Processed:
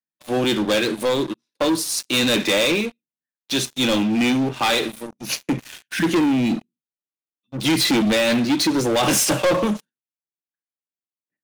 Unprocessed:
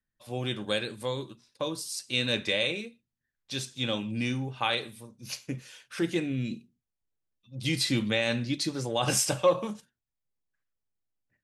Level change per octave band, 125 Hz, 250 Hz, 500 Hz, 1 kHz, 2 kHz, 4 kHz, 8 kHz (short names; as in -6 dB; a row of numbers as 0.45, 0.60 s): +4.5, +13.0, +9.5, +10.0, +9.0, +9.0, +9.5 dB